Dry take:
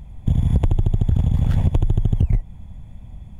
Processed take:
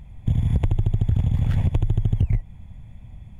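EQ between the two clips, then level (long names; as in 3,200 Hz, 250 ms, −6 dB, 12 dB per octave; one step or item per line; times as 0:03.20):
parametric band 110 Hz +4.5 dB 0.54 octaves
parametric band 2,200 Hz +6.5 dB 0.92 octaves
−4.5 dB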